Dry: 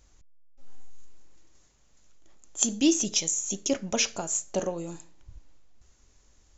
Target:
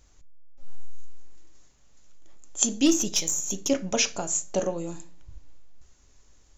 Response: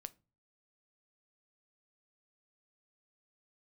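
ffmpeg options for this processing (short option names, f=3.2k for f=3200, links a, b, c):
-filter_complex "[0:a]asplit=3[a][b][c];[a]afade=t=out:st=2.85:d=0.02[d];[b]aeval=exprs='0.299*(cos(1*acos(clip(val(0)/0.299,-1,1)))-cos(1*PI/2))+0.0335*(cos(3*acos(clip(val(0)/0.299,-1,1)))-cos(3*PI/2))+0.015*(cos(5*acos(clip(val(0)/0.299,-1,1)))-cos(5*PI/2))+0.0119*(cos(6*acos(clip(val(0)/0.299,-1,1)))-cos(6*PI/2))':c=same,afade=t=in:st=2.85:d=0.02,afade=t=out:st=3.68:d=0.02[e];[c]afade=t=in:st=3.68:d=0.02[f];[d][e][f]amix=inputs=3:normalize=0[g];[1:a]atrim=start_sample=2205[h];[g][h]afir=irnorm=-1:irlink=0,volume=7dB"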